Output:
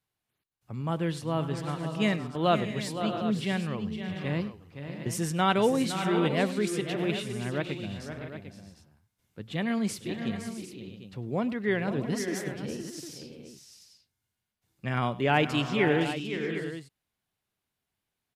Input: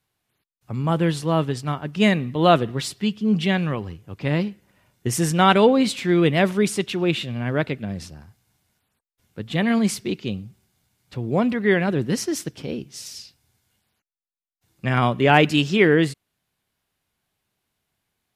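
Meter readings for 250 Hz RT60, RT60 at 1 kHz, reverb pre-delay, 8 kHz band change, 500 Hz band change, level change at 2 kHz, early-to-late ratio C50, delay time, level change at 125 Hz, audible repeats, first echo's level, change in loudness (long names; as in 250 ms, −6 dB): no reverb audible, no reverb audible, no reverb audible, −8.0 dB, −8.0 dB, −8.0 dB, no reverb audible, 101 ms, −8.0 dB, 6, −19.5 dB, −8.5 dB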